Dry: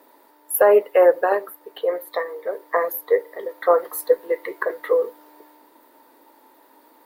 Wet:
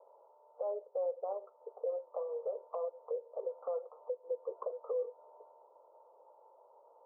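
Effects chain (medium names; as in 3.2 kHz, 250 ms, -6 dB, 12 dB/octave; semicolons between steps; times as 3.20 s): Chebyshev low-pass 1.4 kHz, order 8; compression 16:1, threshold -28 dBFS, peak gain reduction 18.5 dB; ladder high-pass 450 Hz, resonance 60%; static phaser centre 680 Hz, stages 4; peak limiter -30 dBFS, peak gain reduction 9 dB; trim +1.5 dB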